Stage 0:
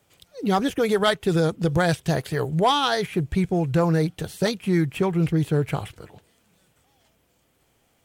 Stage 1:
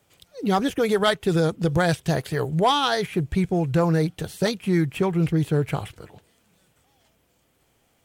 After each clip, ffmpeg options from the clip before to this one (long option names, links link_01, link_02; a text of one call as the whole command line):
ffmpeg -i in.wav -af anull out.wav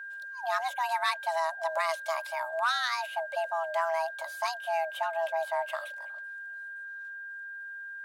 ffmpeg -i in.wav -af "afreqshift=490,aeval=exprs='val(0)+0.0316*sin(2*PI*1600*n/s)':channel_layout=same,highpass=530,volume=-8.5dB" out.wav